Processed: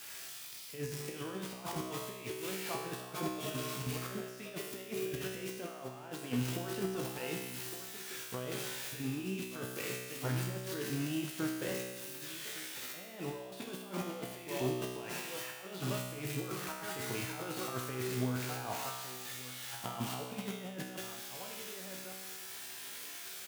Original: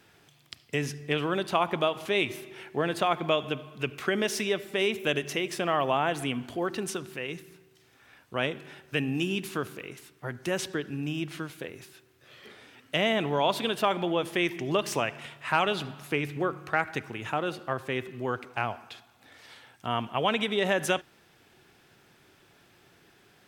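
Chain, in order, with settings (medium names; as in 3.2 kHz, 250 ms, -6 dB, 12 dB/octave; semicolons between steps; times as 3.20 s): zero-crossing glitches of -22.5 dBFS; bass shelf 250 Hz -8 dB; delay 1160 ms -14.5 dB; compressor with a negative ratio -34 dBFS, ratio -0.5; high-pass 43 Hz; tilt EQ -2.5 dB/octave; feedback comb 63 Hz, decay 1.3 s, harmonics all, mix 90%; trim +8.5 dB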